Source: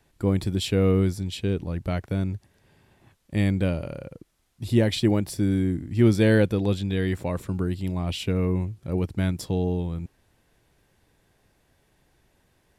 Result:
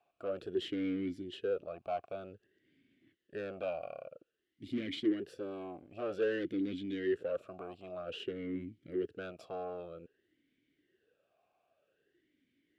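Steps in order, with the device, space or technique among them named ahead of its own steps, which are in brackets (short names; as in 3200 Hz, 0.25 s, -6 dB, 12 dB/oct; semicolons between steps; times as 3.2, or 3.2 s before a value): talk box (tube stage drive 27 dB, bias 0.7; vowel sweep a-i 0.52 Hz); gain +6 dB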